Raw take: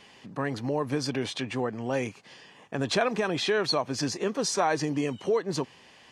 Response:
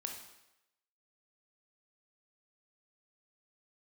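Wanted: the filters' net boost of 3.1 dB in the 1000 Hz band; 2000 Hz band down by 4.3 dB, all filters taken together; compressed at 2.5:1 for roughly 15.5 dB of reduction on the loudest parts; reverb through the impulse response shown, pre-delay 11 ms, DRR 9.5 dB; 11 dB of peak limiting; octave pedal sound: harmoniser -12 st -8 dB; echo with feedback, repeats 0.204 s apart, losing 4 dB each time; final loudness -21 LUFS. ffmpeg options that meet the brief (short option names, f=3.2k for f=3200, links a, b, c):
-filter_complex "[0:a]equalizer=f=1k:t=o:g=6,equalizer=f=2k:t=o:g=-8.5,acompressor=threshold=-44dB:ratio=2.5,alimiter=level_in=11.5dB:limit=-24dB:level=0:latency=1,volume=-11.5dB,aecho=1:1:204|408|612|816|1020|1224|1428|1632|1836:0.631|0.398|0.25|0.158|0.0994|0.0626|0.0394|0.0249|0.0157,asplit=2[a][b];[1:a]atrim=start_sample=2205,adelay=11[c];[b][c]afir=irnorm=-1:irlink=0,volume=-8.5dB[d];[a][d]amix=inputs=2:normalize=0,asplit=2[e][f];[f]asetrate=22050,aresample=44100,atempo=2,volume=-8dB[g];[e][g]amix=inputs=2:normalize=0,volume=21.5dB"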